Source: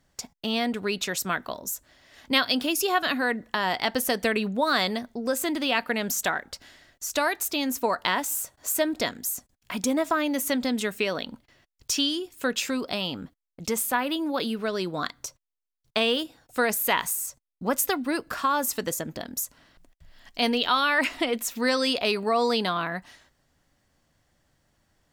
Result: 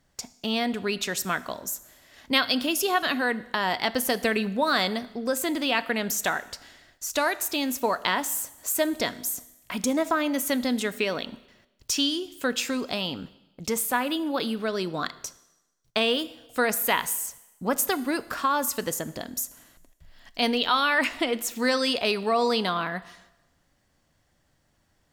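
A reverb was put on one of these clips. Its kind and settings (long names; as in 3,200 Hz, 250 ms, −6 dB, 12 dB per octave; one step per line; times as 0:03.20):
four-comb reverb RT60 1 s, combs from 25 ms, DRR 16.5 dB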